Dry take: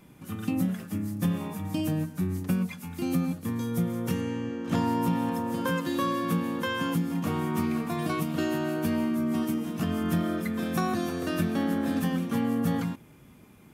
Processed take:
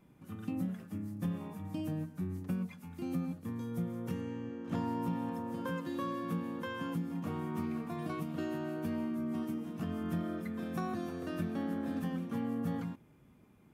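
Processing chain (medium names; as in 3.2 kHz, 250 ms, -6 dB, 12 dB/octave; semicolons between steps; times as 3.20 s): treble shelf 2.3 kHz -8 dB; trim -8.5 dB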